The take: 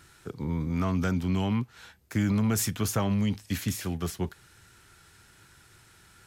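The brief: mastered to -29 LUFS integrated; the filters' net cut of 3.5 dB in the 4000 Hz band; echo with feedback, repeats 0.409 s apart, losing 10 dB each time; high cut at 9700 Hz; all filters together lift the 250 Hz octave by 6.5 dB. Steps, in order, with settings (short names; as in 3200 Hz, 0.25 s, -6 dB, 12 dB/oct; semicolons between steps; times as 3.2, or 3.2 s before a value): LPF 9700 Hz; bell 250 Hz +8.5 dB; bell 4000 Hz -5 dB; feedback echo 0.409 s, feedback 32%, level -10 dB; gain -4.5 dB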